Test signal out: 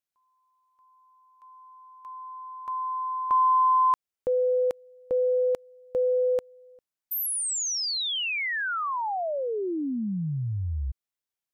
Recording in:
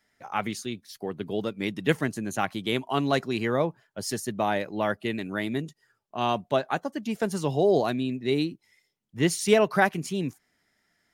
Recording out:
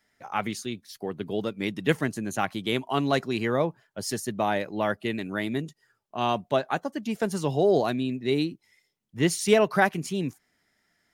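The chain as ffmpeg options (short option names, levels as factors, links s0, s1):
-af "aeval=exprs='0.473*(cos(1*acos(clip(val(0)/0.473,-1,1)))-cos(1*PI/2))+0.00335*(cos(5*acos(clip(val(0)/0.473,-1,1)))-cos(5*PI/2))':c=same"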